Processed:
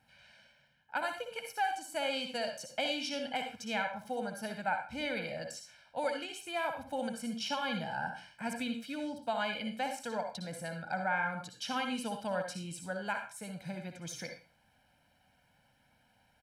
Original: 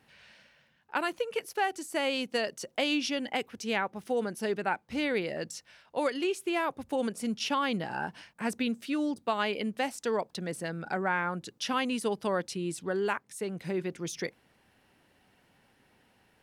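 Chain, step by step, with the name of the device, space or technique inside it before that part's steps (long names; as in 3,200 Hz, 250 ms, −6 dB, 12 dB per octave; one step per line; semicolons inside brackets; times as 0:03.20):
microphone above a desk (comb filter 1.3 ms, depth 89%; convolution reverb RT60 0.35 s, pre-delay 56 ms, DRR 5 dB)
level −7.5 dB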